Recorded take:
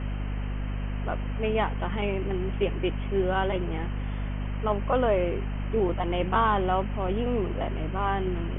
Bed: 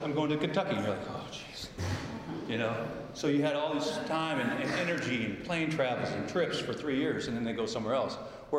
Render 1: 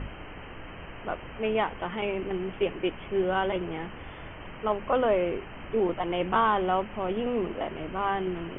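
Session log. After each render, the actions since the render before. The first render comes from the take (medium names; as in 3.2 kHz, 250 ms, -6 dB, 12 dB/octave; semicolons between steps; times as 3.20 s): hum notches 50/100/150/200/250 Hz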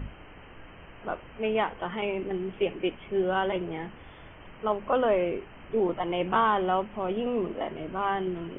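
noise print and reduce 6 dB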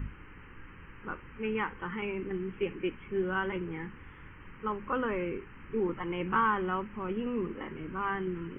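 static phaser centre 1.6 kHz, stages 4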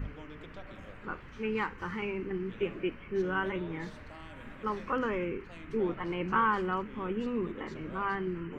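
add bed -19 dB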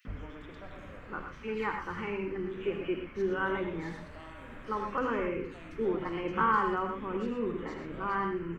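three bands offset in time highs, mids, lows 50/80 ms, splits 150/2800 Hz; gated-style reverb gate 140 ms rising, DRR 4.5 dB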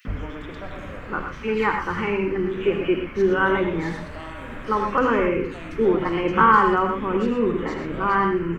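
trim +11.5 dB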